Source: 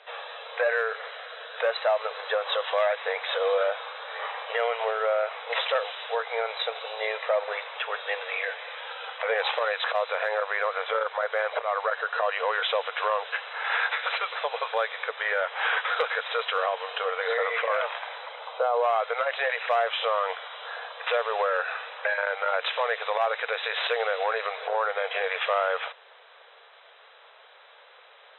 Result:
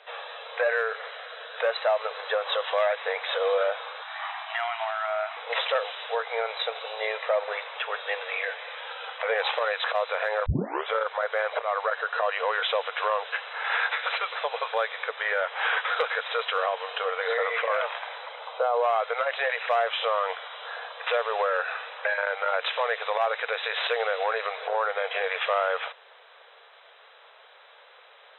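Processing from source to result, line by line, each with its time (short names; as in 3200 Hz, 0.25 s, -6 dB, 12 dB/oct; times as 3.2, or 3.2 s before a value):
4.02–5.37 brick-wall FIR high-pass 620 Hz
10.46 tape start 0.42 s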